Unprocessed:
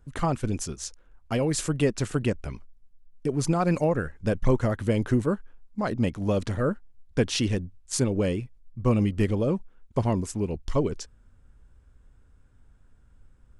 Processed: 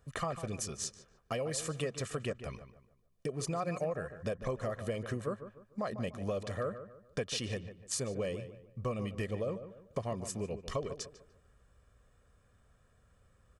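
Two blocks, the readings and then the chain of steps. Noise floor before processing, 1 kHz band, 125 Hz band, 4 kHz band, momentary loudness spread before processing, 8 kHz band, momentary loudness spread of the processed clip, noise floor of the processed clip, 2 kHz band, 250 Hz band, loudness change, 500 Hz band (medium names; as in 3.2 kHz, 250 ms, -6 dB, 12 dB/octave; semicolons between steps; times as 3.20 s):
-58 dBFS, -8.5 dB, -13.0 dB, -6.5 dB, 10 LU, -5.5 dB, 8 LU, -68 dBFS, -8.0 dB, -14.5 dB, -11.0 dB, -8.5 dB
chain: high-pass 250 Hz 6 dB/octave; comb 1.7 ms, depth 59%; compression 3:1, threshold -36 dBFS, peak gain reduction 13 dB; filtered feedback delay 148 ms, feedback 36%, low-pass 2.4 kHz, level -11 dB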